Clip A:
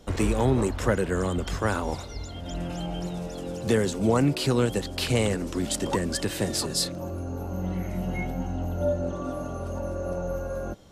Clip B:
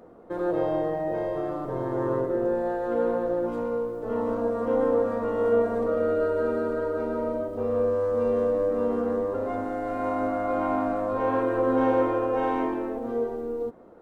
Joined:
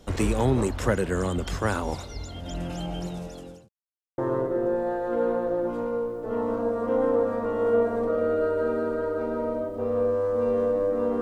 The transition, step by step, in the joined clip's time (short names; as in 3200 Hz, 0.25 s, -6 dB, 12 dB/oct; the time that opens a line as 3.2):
clip A
2.87–3.69 fade out equal-power
3.69–4.18 mute
4.18 switch to clip B from 1.97 s